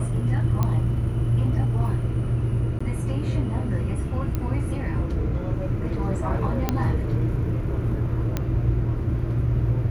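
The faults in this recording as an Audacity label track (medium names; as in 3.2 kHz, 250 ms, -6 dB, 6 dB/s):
0.630000	0.630000	pop -12 dBFS
2.790000	2.810000	dropout 15 ms
4.350000	4.350000	pop -14 dBFS
6.690000	6.690000	pop -8 dBFS
8.370000	8.370000	pop -11 dBFS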